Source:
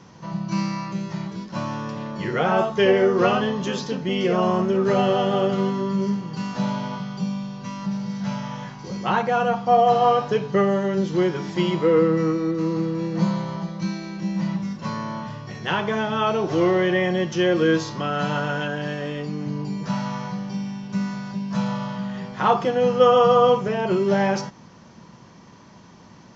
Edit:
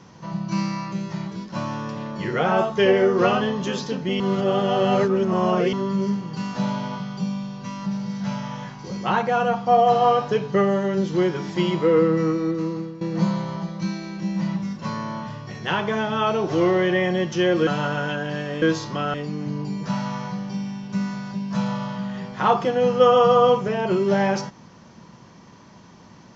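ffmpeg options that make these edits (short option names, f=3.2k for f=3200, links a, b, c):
-filter_complex "[0:a]asplit=7[a][b][c][d][e][f][g];[a]atrim=end=4.202[h];[b]atrim=start=4.198:end=5.732,asetpts=PTS-STARTPTS,areverse[i];[c]atrim=start=5.728:end=13.01,asetpts=PTS-STARTPTS,afade=t=out:st=6.782:d=0.5:silence=0.177828[j];[d]atrim=start=13.01:end=17.672,asetpts=PTS-STARTPTS,afade=t=in:d=0.004:c=hsin:silence=0.177828[k];[e]atrim=start=18.188:end=19.142[l];[f]atrim=start=17.668:end=18.192[m];[g]atrim=start=19.138[n];[h][i]acrossfade=d=0.004:c1=hsin:c2=hsin[o];[j][k]concat=n=2:v=0:a=1[p];[o][p]acrossfade=d=0.004:c1=hsin:c2=hsin[q];[q][l]acrossfade=d=0.004:c1=hsin:c2=hsin[r];[r][m]acrossfade=d=0.004:c1=hsin:c2=hsin[s];[s][n]acrossfade=d=0.004:c1=hsin:c2=hsin"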